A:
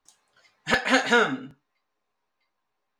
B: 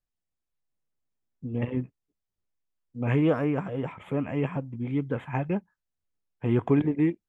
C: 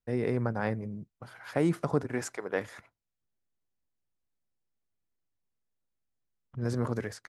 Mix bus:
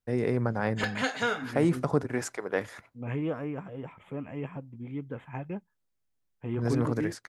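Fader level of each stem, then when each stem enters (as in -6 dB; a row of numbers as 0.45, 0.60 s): -9.0, -8.5, +2.0 dB; 0.10, 0.00, 0.00 s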